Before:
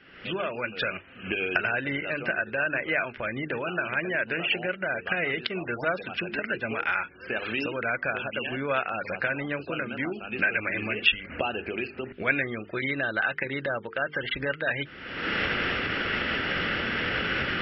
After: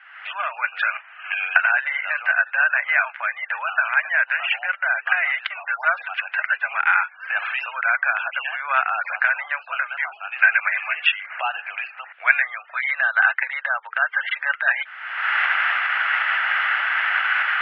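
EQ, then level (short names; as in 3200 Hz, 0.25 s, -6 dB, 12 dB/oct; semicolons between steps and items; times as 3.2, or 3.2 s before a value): steep high-pass 740 Hz 48 dB/oct; Chebyshev low-pass 1800 Hz, order 2; bell 1700 Hz +5 dB 2.6 oct; +5.5 dB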